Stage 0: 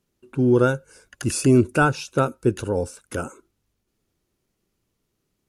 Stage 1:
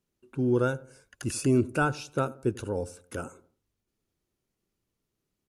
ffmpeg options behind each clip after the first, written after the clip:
ffmpeg -i in.wav -filter_complex "[0:a]asplit=2[link_01][link_02];[link_02]adelay=90,lowpass=frequency=1200:poles=1,volume=-19dB,asplit=2[link_03][link_04];[link_04]adelay=90,lowpass=frequency=1200:poles=1,volume=0.43,asplit=2[link_05][link_06];[link_06]adelay=90,lowpass=frequency=1200:poles=1,volume=0.43[link_07];[link_01][link_03][link_05][link_07]amix=inputs=4:normalize=0,volume=-7.5dB" out.wav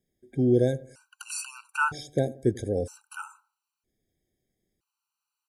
ffmpeg -i in.wav -af "afftfilt=real='re*gt(sin(2*PI*0.52*pts/sr)*(1-2*mod(floor(b*sr/1024/780),2)),0)':imag='im*gt(sin(2*PI*0.52*pts/sr)*(1-2*mod(floor(b*sr/1024/780),2)),0)':win_size=1024:overlap=0.75,volume=3.5dB" out.wav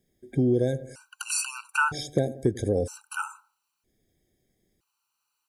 ffmpeg -i in.wav -af "acompressor=threshold=-28dB:ratio=4,volume=7dB" out.wav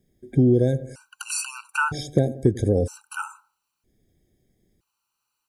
ffmpeg -i in.wav -af "lowshelf=frequency=380:gain=8" out.wav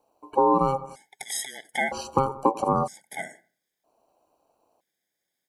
ffmpeg -i in.wav -af "aeval=exprs='val(0)*sin(2*PI*670*n/s)':channel_layout=same" out.wav

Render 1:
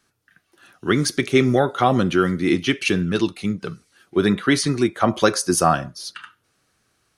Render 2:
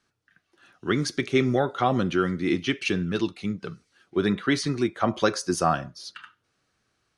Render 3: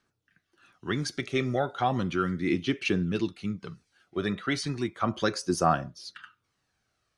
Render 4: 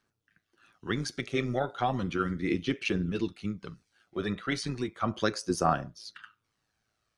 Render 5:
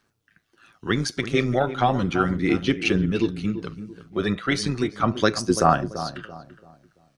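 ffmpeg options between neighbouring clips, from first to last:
ffmpeg -i in.wav -af "lowpass=6800,volume=-5.5dB" out.wav
ffmpeg -i in.wav -af "aphaser=in_gain=1:out_gain=1:delay=1.7:decay=0.39:speed=0.35:type=triangular,volume=-4.5dB" out.wav
ffmpeg -i in.wav -af "tremolo=f=110:d=0.519" out.wav
ffmpeg -i in.wav -filter_complex "[0:a]asplit=2[link_01][link_02];[link_02]adelay=337,lowpass=frequency=1100:poles=1,volume=-11dB,asplit=2[link_03][link_04];[link_04]adelay=337,lowpass=frequency=1100:poles=1,volume=0.36,asplit=2[link_05][link_06];[link_06]adelay=337,lowpass=frequency=1100:poles=1,volume=0.36,asplit=2[link_07][link_08];[link_08]adelay=337,lowpass=frequency=1100:poles=1,volume=0.36[link_09];[link_01][link_03][link_05][link_07][link_09]amix=inputs=5:normalize=0,volume=8dB" out.wav

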